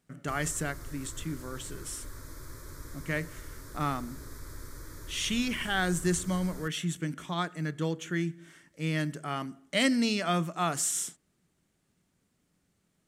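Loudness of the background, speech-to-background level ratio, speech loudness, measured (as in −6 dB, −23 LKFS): −46.5 LKFS, 15.0 dB, −31.5 LKFS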